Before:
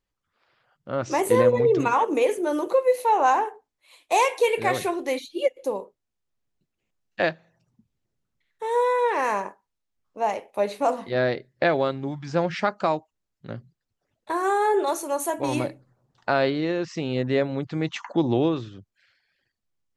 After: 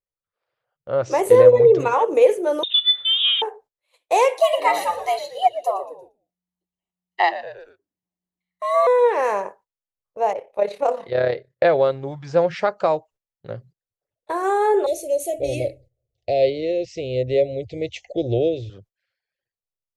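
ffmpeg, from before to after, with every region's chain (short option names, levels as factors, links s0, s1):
-filter_complex "[0:a]asettb=1/sr,asplit=3[s0][s1][s2];[s0]atrim=end=2.634[s3];[s1]atrim=start=2.63:end=3.42,asetpts=PTS-STARTPTS,afade=t=in:d=0.004:c=qsin,afade=t=out:st=0.786:d=0.004:c=qsin,aemphasis=mode=reproduction:type=riaa,lowpass=f=3400:t=q:w=0.5098,lowpass=f=3400:t=q:w=0.6013,lowpass=f=3400:t=q:w=0.9,lowpass=f=3400:t=q:w=2.563,afreqshift=-4000[s4];[s2]atrim=start=3.416[s5];[s3][s4]acrossfade=d=0.004:c1=hsin:c2=qsin[s6];[s6][s5]acrossfade=d=0.004:c1=qsin:c2=hsin,asettb=1/sr,asplit=3[s7][s8][s9];[s7]atrim=end=4.404[s10];[s8]atrim=start=4.4:end=8.87,asetpts=PTS-STARTPTS,afade=t=in:d=0.004:c=qsin,afade=t=out:st=4.466:d=0.004:c=qsin,afreqshift=180,aecho=1:1:1:0.88,atrim=end_sample=197127,asplit=5[s11][s12][s13][s14][s15];[s12]adelay=116,afreqshift=-110,volume=0.188[s16];[s13]adelay=232,afreqshift=-220,volume=0.0881[s17];[s14]adelay=348,afreqshift=-330,volume=0.0417[s18];[s15]adelay=464,afreqshift=-440,volume=0.0195[s19];[s11][s16][s17][s18][s19]amix=inputs=5:normalize=0,atrim=end_sample=197127[s20];[s9]atrim=start=8.866[s21];[s10][s20]acrossfade=d=0.004:c1=hsin:c2=qsin[s22];[s22][s21]acrossfade=d=0.004:c1=qsin:c2=hsin,asettb=1/sr,asplit=3[s23][s24][s25];[s23]atrim=end=10.334[s26];[s24]atrim=start=10.33:end=11.64,asetpts=PTS-STARTPTS,afade=t=in:d=0.004:c=qsin,afade=t=out:st=1.306:d=0.004:c=qsin,lowpass=f=3300:p=1,tremolo=f=34:d=0.621,adynamicequalizer=threshold=0.01:dfrequency=1600:dqfactor=0.7:tfrequency=1600:tqfactor=0.7:attack=5:release=100:ratio=0.375:range=2.5:mode=boostabove:tftype=highshelf[s27];[s25]atrim=start=11.636[s28];[s26][s27]acrossfade=d=0.004:c1=hsin:c2=qsin[s29];[s29][s28]acrossfade=d=0.004:c1=qsin:c2=hsin,asettb=1/sr,asplit=3[s30][s31][s32];[s30]atrim=end=14.864[s33];[s31]atrim=start=14.86:end=18.7,asetpts=PTS-STARTPTS,afade=t=in:d=0.004:c=qsin,afade=t=out:st=3.836:d=0.004:c=qsin,asuperstop=centerf=1200:order=12:qfactor=0.87,lowshelf=f=110:t=q:w=3:g=12[s34];[s32]atrim=start=18.696[s35];[s33][s34]acrossfade=d=0.004:c1=hsin:c2=qsin[s36];[s36][s35]acrossfade=d=0.004:c1=qsin:c2=hsin,agate=range=0.178:threshold=0.00316:ratio=16:detection=peak,equalizer=f=125:t=o:w=1:g=4,equalizer=f=250:t=o:w=1:g=-9,equalizer=f=500:t=o:w=1:g=11,volume=0.891"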